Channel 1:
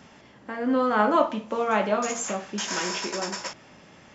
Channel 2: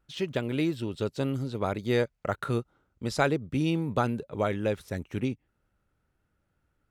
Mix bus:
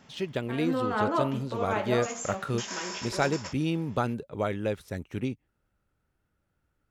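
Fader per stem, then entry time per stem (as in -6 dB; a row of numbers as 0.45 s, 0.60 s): -6.5 dB, -1.5 dB; 0.00 s, 0.00 s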